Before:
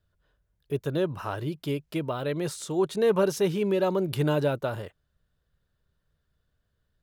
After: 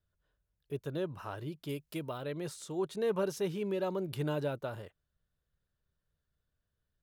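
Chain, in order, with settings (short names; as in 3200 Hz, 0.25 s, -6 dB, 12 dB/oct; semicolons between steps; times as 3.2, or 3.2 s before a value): 1.69–2.18 high shelf 5500 Hz +10.5 dB; gain -9 dB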